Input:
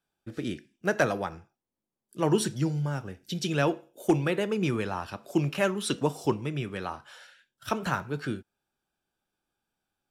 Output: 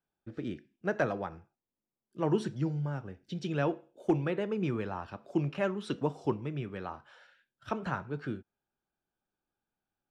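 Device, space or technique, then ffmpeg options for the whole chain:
through cloth: -af "lowpass=6900,highshelf=f=3100:g=-13,volume=0.631"

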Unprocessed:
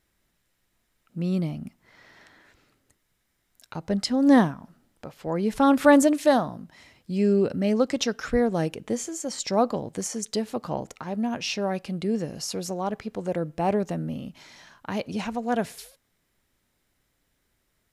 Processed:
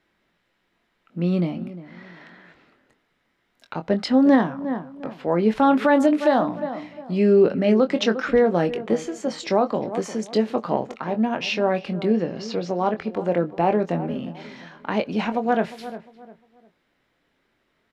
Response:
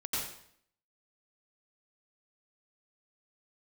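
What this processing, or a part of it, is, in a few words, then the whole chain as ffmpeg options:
DJ mixer with the lows and highs turned down: -filter_complex "[0:a]asettb=1/sr,asplit=3[s0][s1][s2];[s0]atrim=end=12.104[s3];[s1]atrim=start=12.1:end=12.84,asetpts=PTS-STARTPTS,afade=t=in:d=0.004:c=qsin,afade=t=out:st=0.736:d=0.004:c=qsin,lowpass=f=6000:w=0.5412,lowpass=f=6000:w=1.3066[s4];[s2]atrim=start=12.836[s5];[s3][s4]acrossfade=d=0.004:c1=hsin:c2=qsin[s6];[s6][s5]acrossfade=d=0.004:c1=qsin:c2=hsin,acrossover=split=170 4000:gain=0.2 1 0.0891[s7][s8][s9];[s7][s8][s9]amix=inputs=3:normalize=0,asplit=2[s10][s11];[s11]adelay=23,volume=0.376[s12];[s10][s12]amix=inputs=2:normalize=0,asplit=2[s13][s14];[s14]adelay=353,lowpass=f=1500:p=1,volume=0.178,asplit=2[s15][s16];[s16]adelay=353,lowpass=f=1500:p=1,volume=0.31,asplit=2[s17][s18];[s18]adelay=353,lowpass=f=1500:p=1,volume=0.31[s19];[s13][s15][s17][s19]amix=inputs=4:normalize=0,alimiter=limit=0.188:level=0:latency=1:release=240,volume=2.11"

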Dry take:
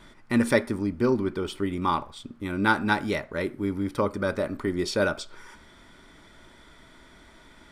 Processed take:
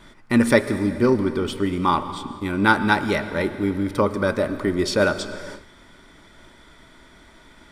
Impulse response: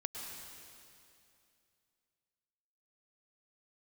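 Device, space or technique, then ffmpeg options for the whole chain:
keyed gated reverb: -filter_complex "[0:a]asplit=3[s0][s1][s2];[1:a]atrim=start_sample=2205[s3];[s1][s3]afir=irnorm=-1:irlink=0[s4];[s2]apad=whole_len=340377[s5];[s4][s5]sidechaingate=range=0.0224:threshold=0.00398:ratio=16:detection=peak,volume=0.501[s6];[s0][s6]amix=inputs=2:normalize=0,volume=1.33"

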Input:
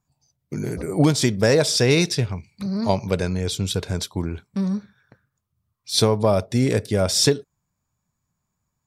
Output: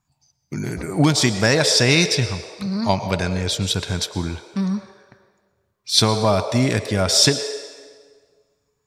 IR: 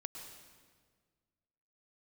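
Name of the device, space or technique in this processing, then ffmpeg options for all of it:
filtered reverb send: -filter_complex "[0:a]asplit=2[s0][s1];[s1]highpass=f=460:w=0.5412,highpass=f=460:w=1.3066,lowpass=8000[s2];[1:a]atrim=start_sample=2205[s3];[s2][s3]afir=irnorm=-1:irlink=0,volume=1.19[s4];[s0][s4]amix=inputs=2:normalize=0,volume=1.12"

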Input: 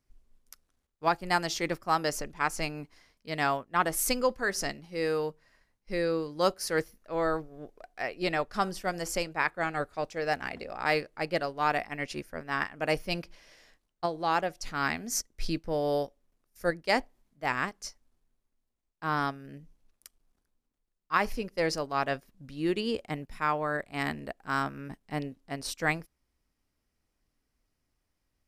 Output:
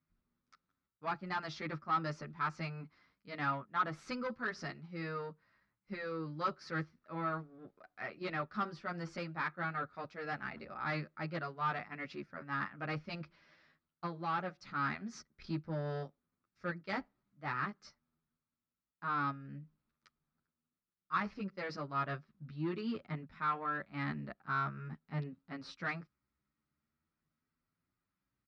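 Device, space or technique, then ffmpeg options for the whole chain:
barber-pole flanger into a guitar amplifier: -filter_complex "[0:a]asplit=2[s0][s1];[s1]adelay=9.5,afreqshift=0.44[s2];[s0][s2]amix=inputs=2:normalize=1,asoftclip=type=tanh:threshold=0.0473,highpass=77,equalizer=f=150:t=q:w=4:g=8,equalizer=f=210:t=q:w=4:g=5,equalizer=f=470:t=q:w=4:g=-6,equalizer=f=720:t=q:w=4:g=-5,equalizer=f=1300:t=q:w=4:g=9,equalizer=f=3000:t=q:w=4:g=-6,lowpass=f=4200:w=0.5412,lowpass=f=4200:w=1.3066,volume=0.631"

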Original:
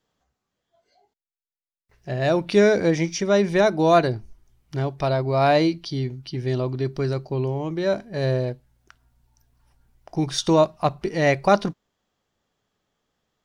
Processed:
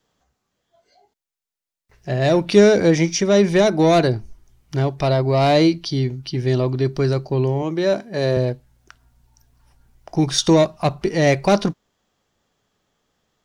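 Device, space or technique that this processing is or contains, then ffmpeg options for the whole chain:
one-band saturation: -filter_complex "[0:a]asettb=1/sr,asplit=3[s0][s1][s2];[s0]atrim=end=7.624[s3];[s1]atrim=start=7.62:end=8.37,asetpts=PTS-STARTPTS,afade=t=in:d=0.004:c=qsin,afade=t=out:st=0.746:d=0.004:c=qsin,highpass=170[s4];[s2]atrim=start=8.366[s5];[s3][s4]acrossfade=d=0.004:c1=hsin:c2=qsin[s6];[s6][s5]acrossfade=d=0.004:c1=qsin:c2=hsin,equalizer=f=6500:w=1.5:g=2,acrossover=split=530|2800[s7][s8][s9];[s8]asoftclip=type=tanh:threshold=0.0596[s10];[s7][s10][s9]amix=inputs=3:normalize=0,volume=1.88"

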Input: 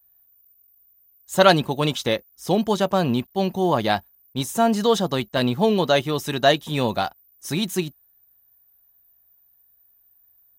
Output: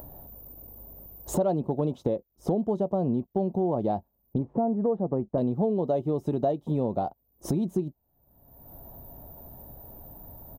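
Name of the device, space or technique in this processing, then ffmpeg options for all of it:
upward and downward compression: -filter_complex "[0:a]firequalizer=gain_entry='entry(420,0);entry(700,-3);entry(1600,-29)':delay=0.05:min_phase=1,asettb=1/sr,asplit=3[s0][s1][s2];[s0]atrim=end=4.384[s3];[s1]atrim=start=4.38:end=5.38,asetpts=PTS-STARTPTS,afade=t=in:d=0.004:c=qsin,afade=t=out:st=0.996:d=0.004:c=qsin,lowpass=f=1900:w=0.5412,lowpass=f=1900:w=1.3066[s4];[s2]atrim=start=5.376[s5];[s3][s4]acrossfade=d=0.004:c1=hsin:c2=qsin[s6];[s6][s5]acrossfade=d=0.004:c1=qsin:c2=hsin,lowshelf=f=100:g=-5.5,acompressor=mode=upward:threshold=0.1:ratio=2.5,acompressor=threshold=0.0501:ratio=4,volume=1.33"

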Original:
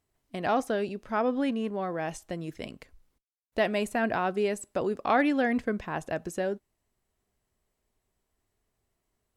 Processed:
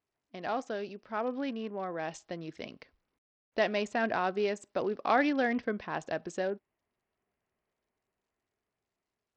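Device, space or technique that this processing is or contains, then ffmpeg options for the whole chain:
Bluetooth headset: -af "highpass=f=230:p=1,dynaudnorm=f=520:g=7:m=1.78,aresample=16000,aresample=44100,volume=0.473" -ar 44100 -c:a sbc -b:a 64k

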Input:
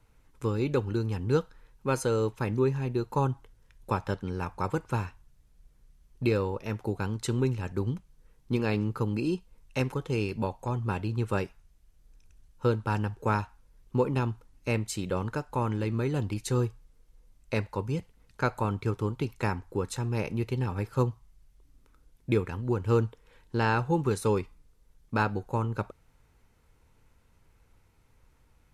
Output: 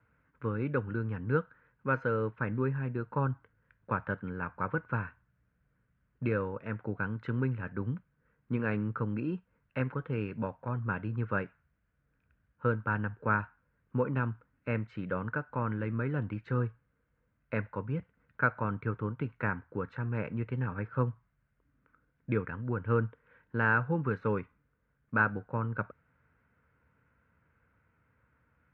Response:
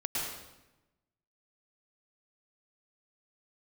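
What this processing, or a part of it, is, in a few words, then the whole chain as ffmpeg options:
bass cabinet: -af "highpass=f=72:w=0.5412,highpass=f=72:w=1.3066,equalizer=f=91:t=q:w=4:g=-6,equalizer=f=370:t=q:w=4:g=-8,equalizer=f=810:t=q:w=4:g=-8,equalizer=f=1500:t=q:w=4:g=9,lowpass=f=2200:w=0.5412,lowpass=f=2200:w=1.3066,volume=0.794"

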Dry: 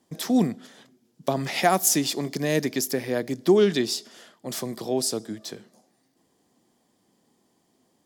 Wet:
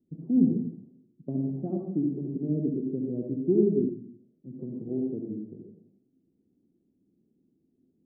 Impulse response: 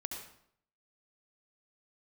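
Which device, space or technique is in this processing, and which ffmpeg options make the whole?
next room: -filter_complex "[0:a]lowpass=f=350:w=0.5412,lowpass=f=350:w=1.3066[s0];[1:a]atrim=start_sample=2205[s1];[s0][s1]afir=irnorm=-1:irlink=0,asettb=1/sr,asplit=3[s2][s3][s4];[s2]atrim=end=3.894[s5];[s3]atrim=start=3.89:end=4.59,asetpts=PTS-STARTPTS,afade=t=in:d=0.004:c=qsin,afade=t=out:st=0.696:d=0.004:c=qsin,equalizer=f=920:w=0.48:g=-13.5[s6];[s4]atrim=start=4.586[s7];[s5][s6]acrossfade=d=0.004:c1=hsin:c2=qsin[s8];[s8][s7]acrossfade=d=0.004:c1=qsin:c2=hsin"

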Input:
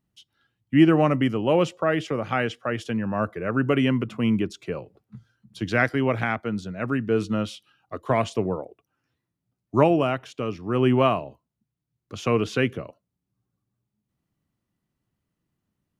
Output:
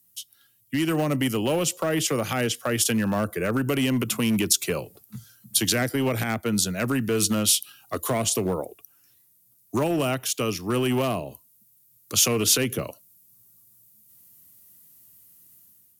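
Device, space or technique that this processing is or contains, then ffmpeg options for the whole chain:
FM broadcast chain: -filter_complex "[0:a]highpass=f=61:w=0.5412,highpass=f=61:w=1.3066,dynaudnorm=f=820:g=3:m=2.82,acrossover=split=150|590[s0][s1][s2];[s0]acompressor=threshold=0.0355:ratio=4[s3];[s1]acompressor=threshold=0.126:ratio=4[s4];[s2]acompressor=threshold=0.0355:ratio=4[s5];[s3][s4][s5]amix=inputs=3:normalize=0,aemphasis=mode=production:type=75fm,alimiter=limit=0.178:level=0:latency=1:release=76,asoftclip=type=hard:threshold=0.133,lowpass=f=15000:w=0.5412,lowpass=f=15000:w=1.3066,aemphasis=mode=production:type=75fm"

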